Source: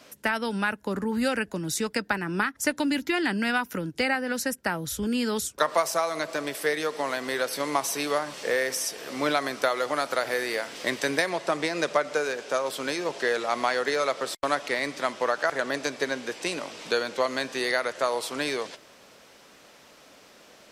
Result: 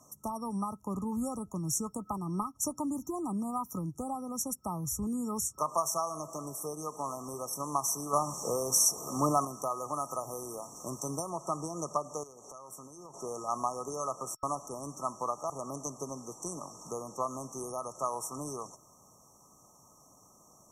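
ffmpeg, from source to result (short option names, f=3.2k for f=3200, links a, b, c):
-filter_complex "[0:a]asettb=1/sr,asplit=3[a][b][c];[a]atrim=end=8.134[d];[b]atrim=start=8.13:end=9.45,asetpts=PTS-STARTPTS,afade=t=in:d=0.004:c=qsin,afade=t=out:st=1.316:d=0.004:c=qsin,acontrast=72[e];[c]atrim=start=9.446[f];[d][e]acrossfade=d=0.004:c1=hsin:c2=qsin[g];[g][f]acrossfade=d=0.004:c1=qsin:c2=hsin,asettb=1/sr,asplit=3[h][i][j];[h]atrim=end=12.234[k];[i]atrim=start=12.23:end=13.14,asetpts=PTS-STARTPTS,afade=t=in:d=0.004:c=qsin,afade=t=out:st=0.906:d=0.004:c=qsin,acompressor=threshold=-36dB:ratio=10:attack=3.2:release=140:knee=1:detection=peak[l];[j]atrim=start=13.136[m];[k][l]acrossfade=d=0.004:c1=hsin:c2=qsin[n];[n][m]acrossfade=d=0.004:c1=qsin:c2=hsin,afftfilt=real='re*(1-between(b*sr/4096,1300,5500))':imag='im*(1-between(b*sr/4096,1300,5500))':win_size=4096:overlap=0.75,equalizer=f=125:t=o:w=1:g=6,equalizer=f=250:t=o:w=1:g=-4,equalizer=f=500:t=o:w=1:g=-11,equalizer=f=4k:t=o:w=1:g=5,volume=-2dB"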